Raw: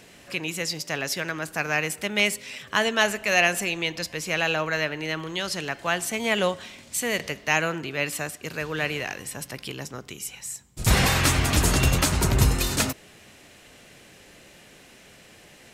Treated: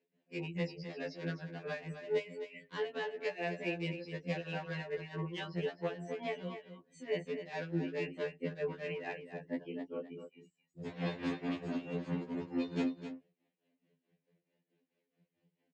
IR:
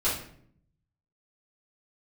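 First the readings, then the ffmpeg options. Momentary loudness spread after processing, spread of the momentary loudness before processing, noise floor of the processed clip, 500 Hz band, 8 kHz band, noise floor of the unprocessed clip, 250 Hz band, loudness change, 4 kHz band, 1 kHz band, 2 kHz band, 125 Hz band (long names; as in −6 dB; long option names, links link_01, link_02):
9 LU, 14 LU, below −85 dBFS, −9.0 dB, below −35 dB, −51 dBFS, −8.0 dB, −14.5 dB, −21.5 dB, −17.0 dB, −19.0 dB, −15.0 dB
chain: -af "aemphasis=mode=reproduction:type=75fm,afftdn=noise_reduction=27:noise_floor=-36,alimiter=limit=-17dB:level=0:latency=1:release=72,acompressor=threshold=-28dB:ratio=8,aeval=exprs='0.0596*(abs(mod(val(0)/0.0596+3,4)-2)-1)':channel_layout=same,tremolo=f=4.6:d=0.84,flanger=delay=1.5:depth=7:regen=-6:speed=1.2:shape=triangular,highpass=frequency=150:width=0.5412,highpass=frequency=150:width=1.3066,equalizer=frequency=150:width_type=q:width=4:gain=9,equalizer=frequency=280:width_type=q:width=4:gain=8,equalizer=frequency=460:width_type=q:width=4:gain=9,equalizer=frequency=1300:width_type=q:width=4:gain=-9,equalizer=frequency=5800:width_type=q:width=4:gain=-6,lowpass=frequency=6300:width=0.5412,lowpass=frequency=6300:width=1.3066,aecho=1:1:259:0.316,afftfilt=real='re*2*eq(mod(b,4),0)':imag='im*2*eq(mod(b,4),0)':win_size=2048:overlap=0.75,volume=1dB"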